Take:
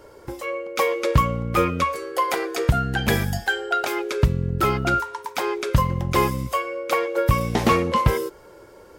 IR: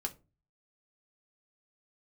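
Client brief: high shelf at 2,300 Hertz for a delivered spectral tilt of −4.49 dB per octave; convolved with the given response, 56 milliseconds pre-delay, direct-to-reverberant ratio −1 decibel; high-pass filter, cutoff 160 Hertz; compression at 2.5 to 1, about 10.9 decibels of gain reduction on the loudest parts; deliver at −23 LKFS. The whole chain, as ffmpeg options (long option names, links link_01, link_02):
-filter_complex "[0:a]highpass=160,highshelf=frequency=2300:gain=3,acompressor=threshold=-32dB:ratio=2.5,asplit=2[link_01][link_02];[1:a]atrim=start_sample=2205,adelay=56[link_03];[link_02][link_03]afir=irnorm=-1:irlink=0,volume=0.5dB[link_04];[link_01][link_04]amix=inputs=2:normalize=0,volume=4.5dB"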